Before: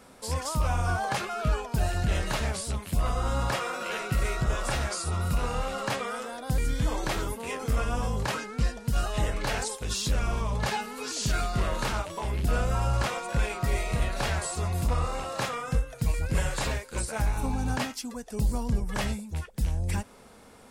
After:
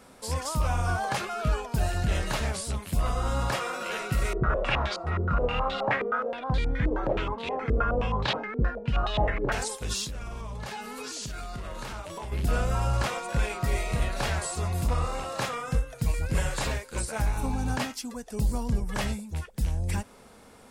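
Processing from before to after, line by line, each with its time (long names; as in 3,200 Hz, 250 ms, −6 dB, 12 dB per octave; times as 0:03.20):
0:04.33–0:09.52: low-pass on a step sequencer 9.5 Hz 400–3,700 Hz
0:10.04–0:12.32: downward compressor, threshold −33 dBFS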